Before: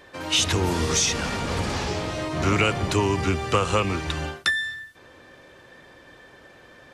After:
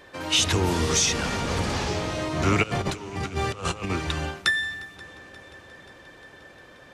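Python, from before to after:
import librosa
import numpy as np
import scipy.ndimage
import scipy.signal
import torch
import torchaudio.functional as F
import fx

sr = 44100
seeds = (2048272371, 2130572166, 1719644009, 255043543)

y = fx.over_compress(x, sr, threshold_db=-28.0, ratio=-0.5, at=(2.62, 3.89), fade=0.02)
y = fx.echo_heads(y, sr, ms=177, heads='second and third', feedback_pct=70, wet_db=-24)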